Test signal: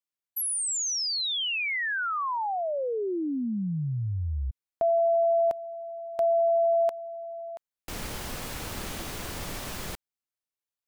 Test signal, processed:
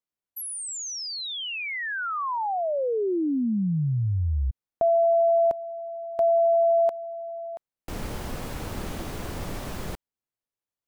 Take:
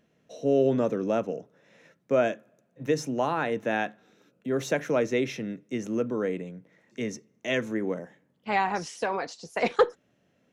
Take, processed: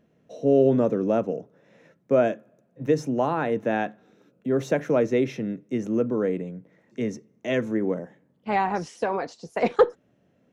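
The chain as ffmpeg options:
-af "tiltshelf=f=1300:g=5"

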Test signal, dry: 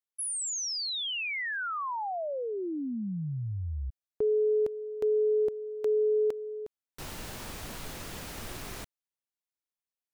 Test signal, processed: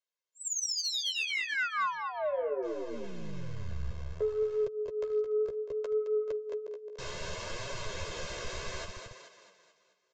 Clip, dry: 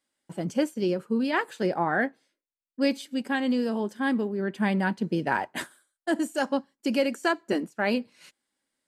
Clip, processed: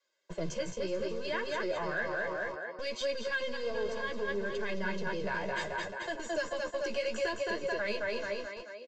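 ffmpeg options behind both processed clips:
-filter_complex "[0:a]equalizer=f=570:t=o:w=0.3:g=2,aecho=1:1:217|434|651|868|1085|1302:0.501|0.256|0.13|0.0665|0.0339|0.0173,acrossover=split=300|1500[s0][s1][s2];[s1]acompressor=threshold=0.0251:ratio=5:attack=21:release=143:knee=2.83:detection=peak[s3];[s0][s3][s2]amix=inputs=3:normalize=0,asplit=2[s4][s5];[s5]alimiter=limit=0.0631:level=0:latency=1:release=22,volume=0.944[s6];[s4][s6]amix=inputs=2:normalize=0,adynamicequalizer=threshold=0.01:dfrequency=100:dqfactor=1.3:tfrequency=100:tqfactor=1.3:attack=5:release=100:ratio=0.375:range=2:mode=cutabove:tftype=bell,acrossover=split=230|3300[s7][s8][s9];[s7]acrusher=bits=4:dc=4:mix=0:aa=0.000001[s10];[s10][s8][s9]amix=inputs=3:normalize=0,aresample=16000,aresample=44100,acompressor=threshold=0.0562:ratio=6:attack=5.5:release=55:knee=6,aecho=1:1:1.9:0.99,asoftclip=type=tanh:threshold=0.141,flanger=delay=6.9:depth=9.8:regen=18:speed=0.65:shape=triangular,volume=0.708"

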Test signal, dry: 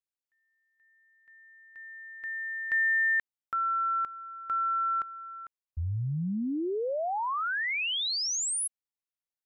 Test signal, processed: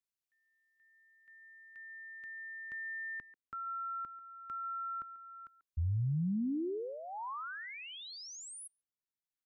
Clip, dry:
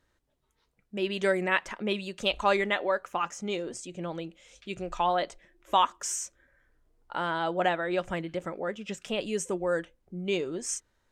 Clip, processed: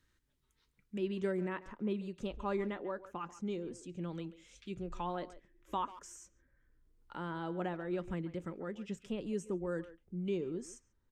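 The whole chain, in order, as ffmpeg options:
-filter_complex "[0:a]equalizer=f=660:t=o:w=1.1:g=-14.5,acrossover=split=490|990[s0][s1][s2];[s2]acompressor=threshold=0.00398:ratio=5:attack=1.6:release=715:detection=rms[s3];[s0][s1][s3]amix=inputs=3:normalize=0,asplit=2[s4][s5];[s5]adelay=140,highpass=300,lowpass=3400,asoftclip=type=hard:threshold=0.0316,volume=0.178[s6];[s4][s6]amix=inputs=2:normalize=0,volume=0.891"

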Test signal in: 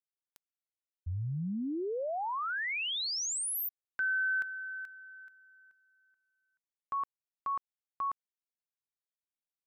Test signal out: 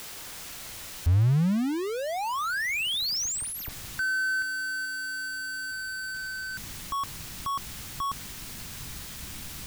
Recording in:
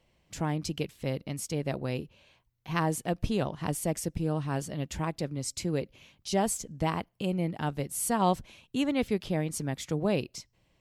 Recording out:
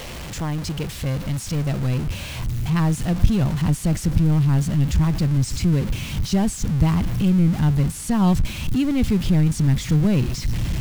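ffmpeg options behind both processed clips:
-filter_complex "[0:a]aeval=exprs='val(0)+0.5*0.0398*sgn(val(0))':c=same,asubboost=boost=7:cutoff=190,acrossover=split=7700[s0][s1];[s1]acompressor=threshold=0.0112:ratio=4:attack=1:release=60[s2];[s0][s2]amix=inputs=2:normalize=0"

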